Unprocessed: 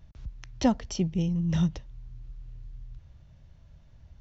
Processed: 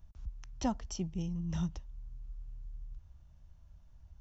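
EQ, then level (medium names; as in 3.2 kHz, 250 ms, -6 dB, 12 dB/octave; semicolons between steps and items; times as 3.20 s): graphic EQ 125/250/500/2000/4000 Hz -10/-5/-10/-9/-8 dB; -1.0 dB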